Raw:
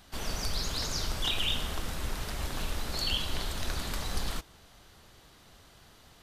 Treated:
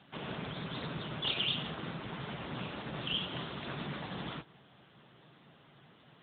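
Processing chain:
harmonic generator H 2 −14 dB, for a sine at −15.5 dBFS
low shelf with overshoot 110 Hz −6.5 dB, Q 3
AMR narrowband 10.2 kbit/s 8,000 Hz

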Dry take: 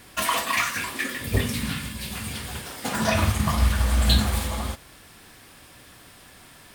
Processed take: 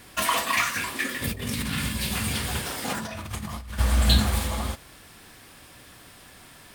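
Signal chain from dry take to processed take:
0:01.22–0:03.79: compressor whose output falls as the input rises −31 dBFS, ratio −1

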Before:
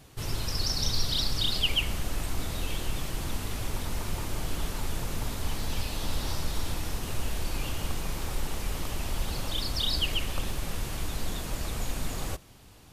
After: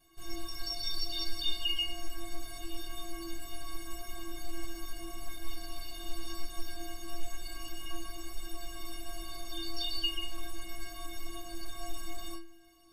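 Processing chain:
stiff-string resonator 330 Hz, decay 0.68 s, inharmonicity 0.03
flanger 0.24 Hz, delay 4.7 ms, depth 7.4 ms, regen −60%
level +15 dB

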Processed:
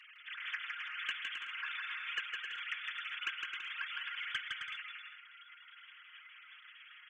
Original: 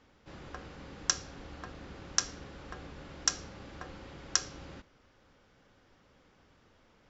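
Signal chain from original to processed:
three sine waves on the formant tracks
Bessel high-pass filter 2,700 Hz, order 8
comb filter 6.4 ms, depth 77%
downward compressor 6 to 1, threshold −49 dBFS, peak gain reduction 17.5 dB
soft clipping −38.5 dBFS, distortion −21 dB
bouncing-ball delay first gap 160 ms, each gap 0.65×, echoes 5
level +12.5 dB

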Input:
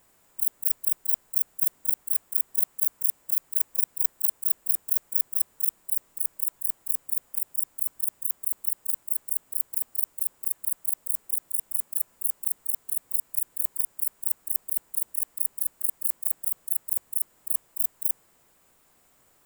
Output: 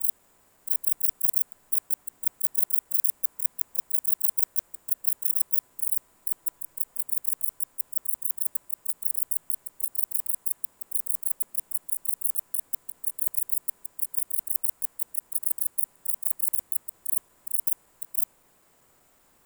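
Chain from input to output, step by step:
slices reordered back to front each 190 ms, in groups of 3
delay with a low-pass on its return 77 ms, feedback 72%, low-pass 1,700 Hz, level −6 dB

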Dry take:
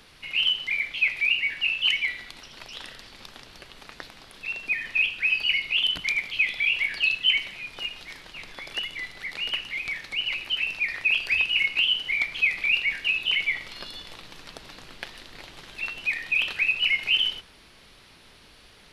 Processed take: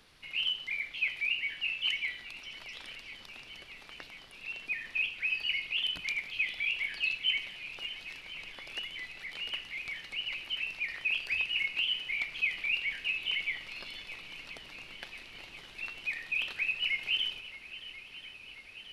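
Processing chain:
feedback echo with a long and a short gap by turns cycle 1,036 ms, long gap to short 1.5 to 1, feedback 69%, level −16.5 dB
level −8.5 dB

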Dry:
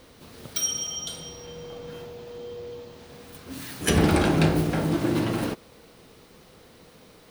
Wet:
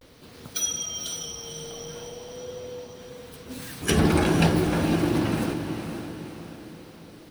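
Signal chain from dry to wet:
spectral magnitudes quantised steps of 15 dB
pitch vibrato 0.49 Hz 66 cents
feedback delay with all-pass diffusion 506 ms, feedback 47%, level −7.5 dB

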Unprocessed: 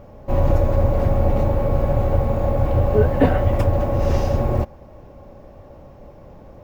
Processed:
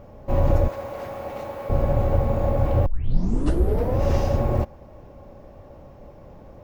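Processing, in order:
0:00.68–0:01.70: high-pass filter 1,200 Hz 6 dB per octave
0:02.86: tape start 1.15 s
level −2 dB

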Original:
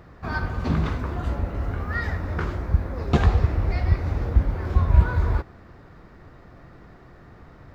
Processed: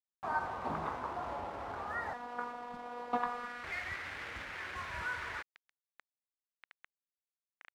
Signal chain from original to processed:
bit-depth reduction 6 bits, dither none
0:02.13–0:03.64: phases set to zero 242 Hz
band-pass filter sweep 870 Hz → 1,900 Hz, 0:03.10–0:03.73
level +1 dB

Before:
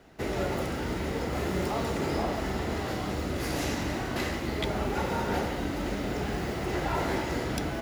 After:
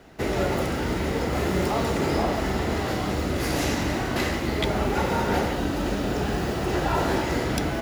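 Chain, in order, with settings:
0:05.53–0:07.23: notch filter 2,100 Hz, Q 8.5
level +5.5 dB

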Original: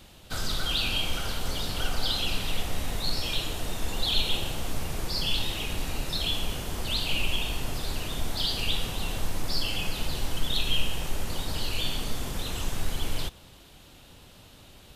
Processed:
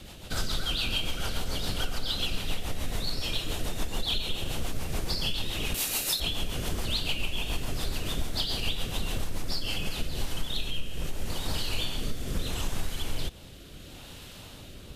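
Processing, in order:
0:05.74–0:06.20: RIAA equalisation recording
downward compressor 5 to 1, threshold −32 dBFS, peak gain reduction 14.5 dB
rotating-speaker cabinet horn 7 Hz, later 0.75 Hz, at 0:09.43
level +8 dB

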